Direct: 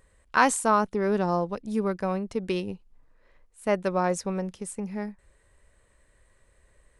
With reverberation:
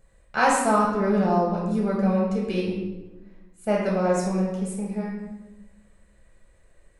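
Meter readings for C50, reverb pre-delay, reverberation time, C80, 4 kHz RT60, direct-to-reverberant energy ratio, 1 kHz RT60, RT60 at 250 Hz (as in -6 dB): 1.5 dB, 5 ms, 1.1 s, 4.0 dB, 0.75 s, -4.0 dB, 1.0 s, 1.5 s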